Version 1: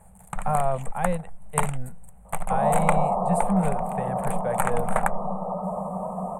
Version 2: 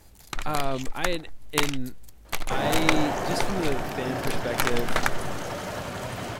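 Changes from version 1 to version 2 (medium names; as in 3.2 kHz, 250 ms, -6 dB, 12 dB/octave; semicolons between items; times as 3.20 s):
second sound: remove brick-wall FIR band-pass 160–1300 Hz; master: remove FFT filter 110 Hz 0 dB, 190 Hz +13 dB, 300 Hz -25 dB, 470 Hz +1 dB, 780 Hz +8 dB, 1.5 kHz -3 dB, 2.4 kHz -8 dB, 5.3 kHz -30 dB, 8.6 kHz +7 dB, 14 kHz -11 dB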